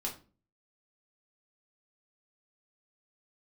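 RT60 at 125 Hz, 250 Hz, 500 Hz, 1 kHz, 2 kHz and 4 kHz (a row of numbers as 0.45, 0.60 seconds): 0.60, 0.55, 0.40, 0.30, 0.30, 0.25 seconds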